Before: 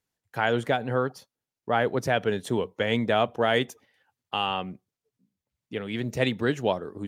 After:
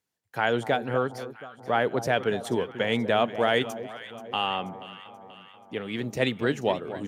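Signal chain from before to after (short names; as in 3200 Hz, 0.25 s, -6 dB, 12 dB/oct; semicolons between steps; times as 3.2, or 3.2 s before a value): HPF 130 Hz 6 dB/oct; on a send: echo with dull and thin repeats by turns 0.241 s, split 1000 Hz, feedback 72%, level -12 dB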